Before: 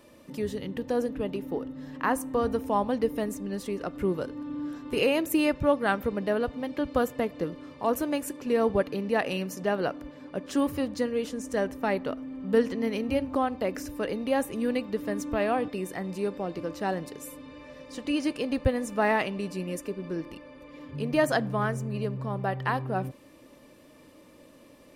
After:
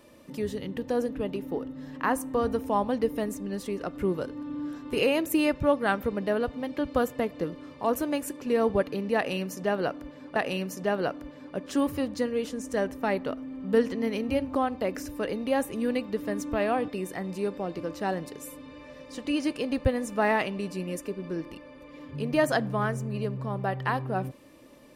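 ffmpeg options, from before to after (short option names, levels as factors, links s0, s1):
-filter_complex "[0:a]asplit=2[s0][s1];[s0]atrim=end=10.362[s2];[s1]atrim=start=9.158[s3];[s2][s3]acrossfade=d=0.004:c1=hsin:c2=hsin"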